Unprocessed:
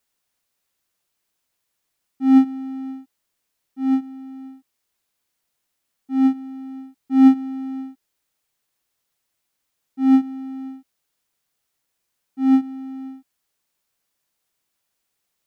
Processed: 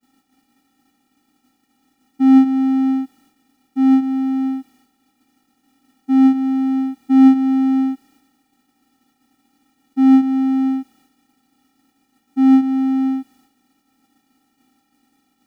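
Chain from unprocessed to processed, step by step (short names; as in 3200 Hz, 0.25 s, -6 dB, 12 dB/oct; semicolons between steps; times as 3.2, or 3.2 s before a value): per-bin compression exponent 0.6; in parallel at +2 dB: compressor, threshold -20 dBFS, peak gain reduction 13 dB; on the sum: expander -49 dBFS; gain -1 dB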